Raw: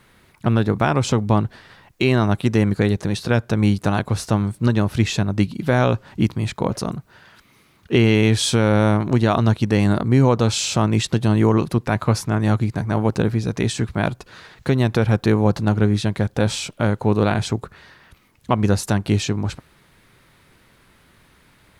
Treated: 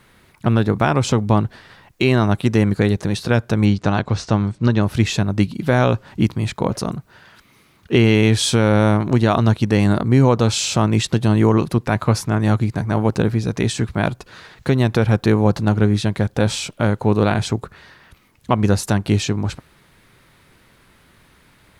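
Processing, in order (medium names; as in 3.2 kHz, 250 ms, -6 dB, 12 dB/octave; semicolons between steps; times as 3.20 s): 3.65–4.83 s: low-pass 6.5 kHz 24 dB/octave; trim +1.5 dB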